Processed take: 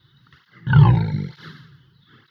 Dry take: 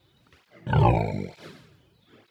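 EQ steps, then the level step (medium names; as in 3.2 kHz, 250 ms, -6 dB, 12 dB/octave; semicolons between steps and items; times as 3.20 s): peaking EQ 140 Hz +13.5 dB 0.83 oct; peaking EQ 2.1 kHz +12.5 dB 2.1 oct; static phaser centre 2.4 kHz, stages 6; -1.0 dB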